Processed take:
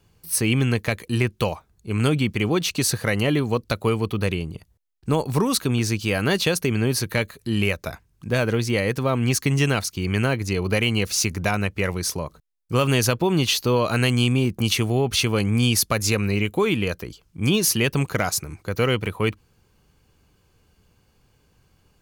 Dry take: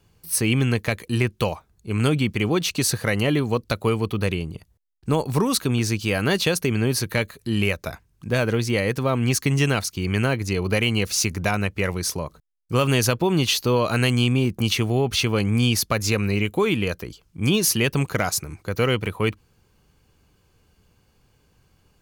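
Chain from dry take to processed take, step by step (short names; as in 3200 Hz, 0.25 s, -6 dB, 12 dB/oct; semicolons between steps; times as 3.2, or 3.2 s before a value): 14.11–16.15 dynamic EQ 9800 Hz, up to +5 dB, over -41 dBFS, Q 0.89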